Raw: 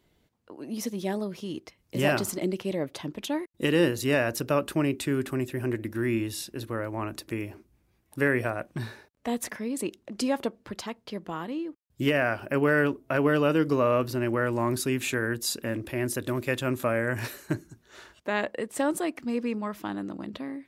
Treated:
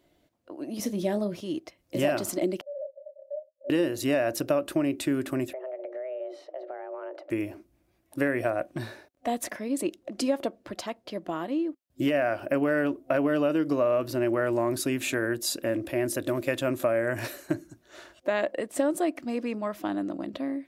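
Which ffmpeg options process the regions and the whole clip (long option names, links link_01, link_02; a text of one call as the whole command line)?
ffmpeg -i in.wav -filter_complex "[0:a]asettb=1/sr,asplit=3[link_01][link_02][link_03];[link_01]atrim=end=0.794[link_04];[link_02]atrim=start=0.79:end=1.41,asetpts=PTS-STARTPTS,afade=type=in:duration=0.004:curve=qsin,afade=type=out:start_time=0.616:duration=0.004:curve=qsin,equalizer=frequency=74:width_type=o:width=2.5:gain=12,asplit=2[link_05][link_06];[link_06]adelay=29,volume=-12.5dB[link_07];[link_05][link_07]amix=inputs=2:normalize=0,atrim=end_sample=27342[link_08];[link_03]atrim=start=1.406[link_09];[link_04][link_08]acrossfade=duration=0.004:curve1=hsin:curve2=qsin[link_10];[link_10][link_09]acrossfade=duration=0.004:curve1=qsin:curve2=hsin,asettb=1/sr,asplit=3[link_11][link_12][link_13];[link_11]atrim=end=2.614[link_14];[link_12]atrim=start=2.61:end=3.7,asetpts=PTS-STARTPTS,afade=type=in:duration=0.004:curve=qsin,afade=type=out:start_time=1.086:duration=0.004:curve=qsin,asuperpass=centerf=580:order=12:qfactor=6.1,acompressor=threshold=-48dB:ratio=2:attack=3.2:release=140:knee=1:detection=peak,asplit=2[link_15][link_16];[link_16]adelay=28,volume=-3.5dB[link_17];[link_15][link_17]amix=inputs=2:normalize=0,atrim=end_sample=48069[link_18];[link_13]atrim=start=3.696[link_19];[link_14][link_18]acrossfade=duration=0.004:curve1=hsin:curve2=qsin[link_20];[link_20][link_19]acrossfade=duration=0.004:curve1=qsin:curve2=hsin,asettb=1/sr,asplit=3[link_21][link_22][link_23];[link_21]atrim=end=5.534[link_24];[link_22]atrim=start=5.53:end=7.3,asetpts=PTS-STARTPTS,afade=type=in:duration=0.004:curve=qsin,afade=type=out:start_time=1.766:duration=0.004:curve=qsin,afreqshift=260,lowpass=1600,acompressor=threshold=-39dB:ratio=5:attack=3.2:release=140:knee=1:detection=peak[link_25];[link_23]atrim=start=7.296[link_26];[link_24][link_25]acrossfade=duration=0.004:curve1=hsin:curve2=qsin[link_27];[link_27][link_26]acrossfade=duration=0.004:curve1=qsin:curve2=hsin,superequalizer=6b=2.24:8b=2.51,acompressor=threshold=-20dB:ratio=6,lowshelf=frequency=270:gain=-4" out.wav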